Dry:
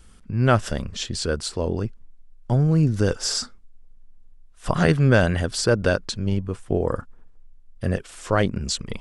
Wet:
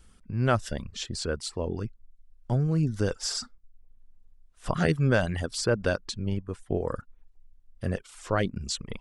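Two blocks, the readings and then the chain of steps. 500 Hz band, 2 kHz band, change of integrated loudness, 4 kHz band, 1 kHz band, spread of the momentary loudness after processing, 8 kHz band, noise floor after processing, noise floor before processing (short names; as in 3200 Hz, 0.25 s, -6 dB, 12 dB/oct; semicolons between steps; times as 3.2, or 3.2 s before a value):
-6.0 dB, -6.0 dB, -6.5 dB, -6.0 dB, -6.0 dB, 11 LU, -6.0 dB, -59 dBFS, -49 dBFS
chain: reverb removal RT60 0.5 s; gain -5.5 dB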